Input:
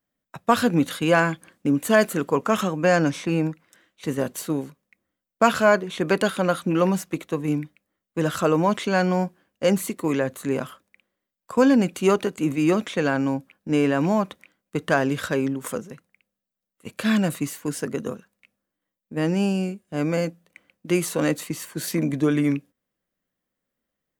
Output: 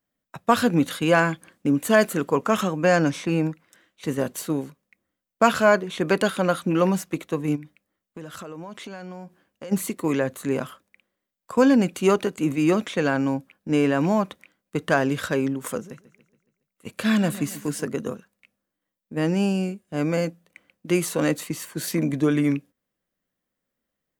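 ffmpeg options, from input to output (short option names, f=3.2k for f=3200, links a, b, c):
-filter_complex "[0:a]asplit=3[a][b][c];[a]afade=t=out:st=7.55:d=0.02[d];[b]acompressor=threshold=-35dB:ratio=6:attack=3.2:release=140:knee=1:detection=peak,afade=t=in:st=7.55:d=0.02,afade=t=out:st=9.71:d=0.02[e];[c]afade=t=in:st=9.71:d=0.02[f];[d][e][f]amix=inputs=3:normalize=0,asettb=1/sr,asplit=3[g][h][i];[g]atrim=end=15.784[j];[h]atrim=start=15.78:end=17.84,asetpts=PTS-STARTPTS,afade=t=in:d=0.004:c=qsin,afade=t=out:st=2.056:d=0.004:c=qsin,aecho=1:1:140|280|420|560|700:0.15|0.0778|0.0405|0.021|0.0109,atrim=end_sample=90846[k];[i]atrim=start=17.836[l];[j][k]acrossfade=d=0.004:c1=hsin:c2=qsin[m];[m][l]acrossfade=d=0.004:c1=qsin:c2=hsin"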